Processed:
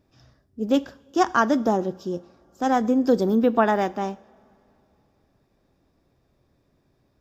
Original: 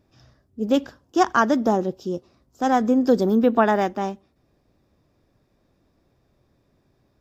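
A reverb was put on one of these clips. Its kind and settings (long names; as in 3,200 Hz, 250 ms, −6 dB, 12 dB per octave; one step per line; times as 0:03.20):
coupled-rooms reverb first 0.53 s, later 3.2 s, from −18 dB, DRR 17 dB
level −1.5 dB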